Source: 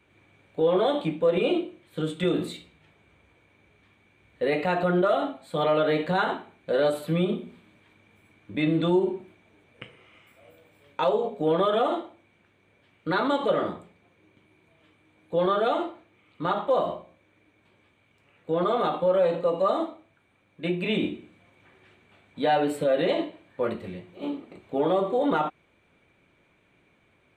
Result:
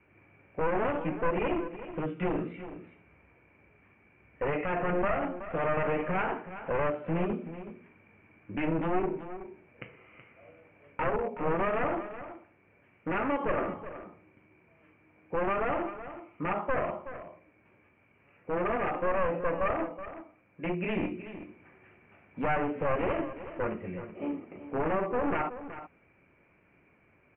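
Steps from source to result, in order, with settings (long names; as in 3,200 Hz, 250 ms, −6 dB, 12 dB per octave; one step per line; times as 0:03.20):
wavefolder on the positive side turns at −24.5 dBFS
Butterworth low-pass 2,700 Hz 72 dB per octave
in parallel at −3 dB: downward compressor, threshold −34 dBFS, peak gain reduction 14.5 dB
on the sum: single-tap delay 374 ms −12.5 dB
level −5 dB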